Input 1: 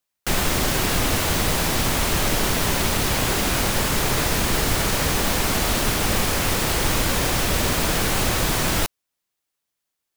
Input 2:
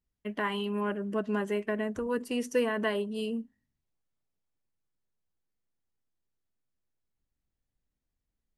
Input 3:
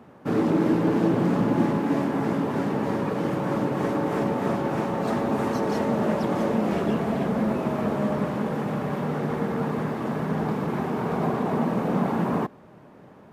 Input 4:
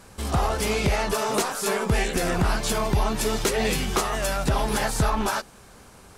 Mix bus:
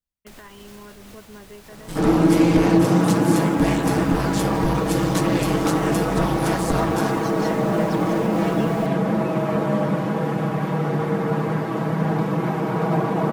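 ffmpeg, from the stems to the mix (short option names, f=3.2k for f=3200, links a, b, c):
-filter_complex "[0:a]alimiter=limit=-19dB:level=0:latency=1:release=239,volume=-15dB[a];[1:a]volume=-9dB[b];[2:a]aecho=1:1:6.2:0.82,adelay=1700,volume=2dB[c];[3:a]aeval=exprs='val(0)*sin(2*PI*94*n/s)':c=same,adelay=1700,volume=-0.5dB[d];[a][b]amix=inputs=2:normalize=0,alimiter=level_in=7.5dB:limit=-24dB:level=0:latency=1:release=361,volume=-7.5dB,volume=0dB[e];[c][d][e]amix=inputs=3:normalize=0"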